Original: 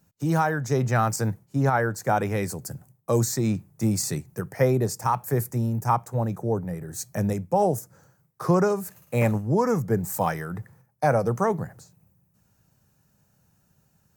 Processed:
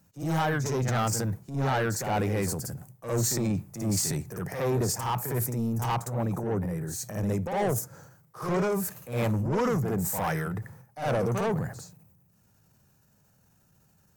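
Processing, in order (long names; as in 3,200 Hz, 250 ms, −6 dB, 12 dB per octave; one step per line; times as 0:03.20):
soft clipping −22.5 dBFS, distortion −10 dB
backwards echo 57 ms −7 dB
transient designer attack −6 dB, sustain +6 dB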